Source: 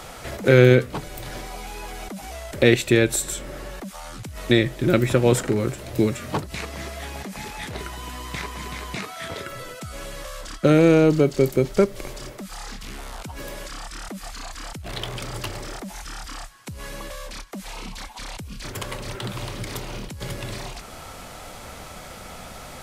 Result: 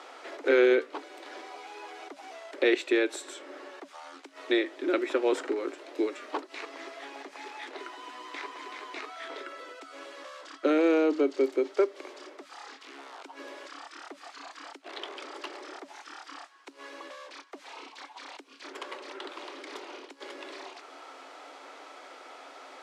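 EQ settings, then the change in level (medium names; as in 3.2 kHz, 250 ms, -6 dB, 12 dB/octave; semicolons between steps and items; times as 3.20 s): rippled Chebyshev high-pass 270 Hz, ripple 3 dB; low-pass 4.8 kHz 12 dB/octave; -5.0 dB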